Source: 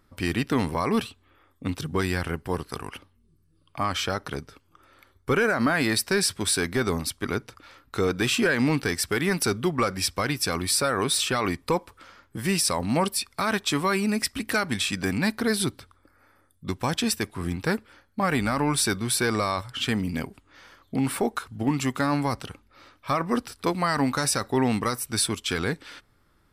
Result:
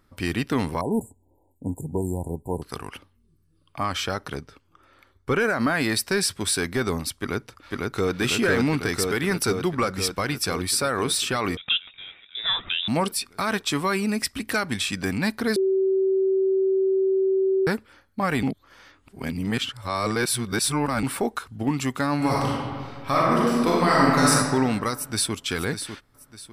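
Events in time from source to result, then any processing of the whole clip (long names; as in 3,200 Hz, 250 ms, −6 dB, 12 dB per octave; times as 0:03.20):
0:00.81–0:02.62: linear-phase brick-wall band-stop 1,000–6,700 Hz
0:04.38–0:05.40: high-shelf EQ 10,000 Hz −10.5 dB
0:07.15–0:08.14: delay throw 500 ms, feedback 75%, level −1 dB
0:11.57–0:12.88: voice inversion scrambler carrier 3,700 Hz
0:15.56–0:17.67: beep over 383 Hz −18 dBFS
0:18.43–0:21.03: reverse
0:22.16–0:24.31: thrown reverb, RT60 1.8 s, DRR −5.5 dB
0:24.94–0:25.35: delay throw 600 ms, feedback 35%, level −9 dB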